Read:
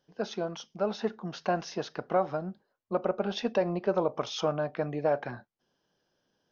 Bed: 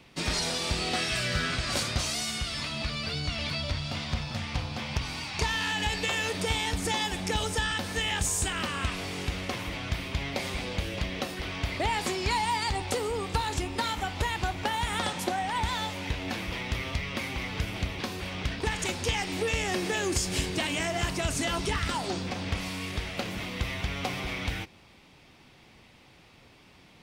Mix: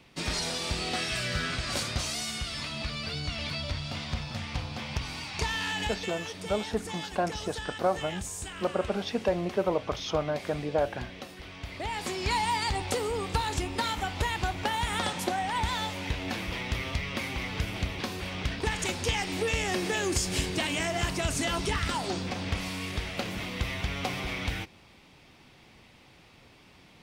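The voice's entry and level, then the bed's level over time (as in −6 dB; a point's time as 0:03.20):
5.70 s, 0.0 dB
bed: 0:05.81 −2 dB
0:06.15 −9.5 dB
0:11.60 −9.5 dB
0:12.35 0 dB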